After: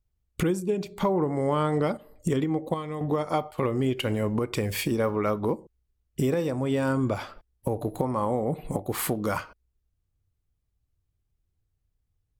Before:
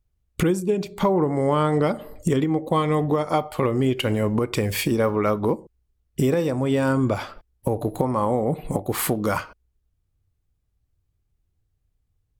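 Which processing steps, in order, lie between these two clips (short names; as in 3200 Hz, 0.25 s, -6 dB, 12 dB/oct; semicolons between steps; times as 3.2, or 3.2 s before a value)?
1.47–3.58 chopper 1.3 Hz, depth 60%, duty 65%; gain -4.5 dB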